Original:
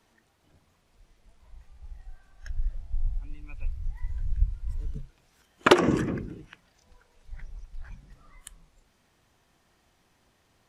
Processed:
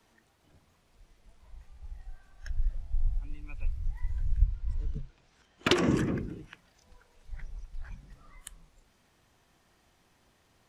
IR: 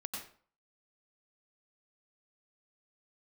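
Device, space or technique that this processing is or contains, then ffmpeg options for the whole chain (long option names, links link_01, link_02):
one-band saturation: -filter_complex "[0:a]asettb=1/sr,asplit=3[link_01][link_02][link_03];[link_01]atrim=end=4.444[link_04];[link_02]atrim=start=4.44:end=5.75,asetpts=PTS-STARTPTS,afade=type=in:duration=0.004:curve=qsin,afade=type=out:start_time=1.306:duration=0.004:curve=qsin,lowpass=6300[link_05];[link_03]atrim=start=5.746[link_06];[link_04][link_05]acrossfade=duration=0.004:curve1=hsin:curve2=qsin[link_07];[link_07][link_06]acrossfade=duration=0.004:curve1=qsin:curve2=hsin,acrossover=split=270|2200[link_08][link_09][link_10];[link_09]asoftclip=type=tanh:threshold=-28.5dB[link_11];[link_08][link_11][link_10]amix=inputs=3:normalize=0"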